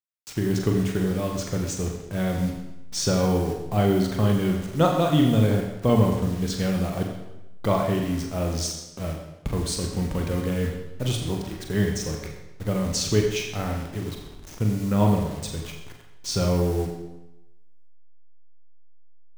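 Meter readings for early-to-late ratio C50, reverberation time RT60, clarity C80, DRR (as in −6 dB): 4.5 dB, 0.95 s, 6.0 dB, 1.0 dB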